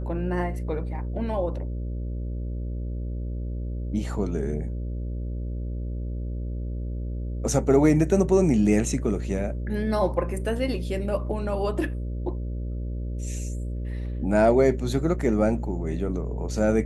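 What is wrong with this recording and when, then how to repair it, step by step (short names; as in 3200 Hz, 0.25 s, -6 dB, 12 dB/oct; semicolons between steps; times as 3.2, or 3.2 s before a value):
buzz 60 Hz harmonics 10 -30 dBFS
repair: de-hum 60 Hz, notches 10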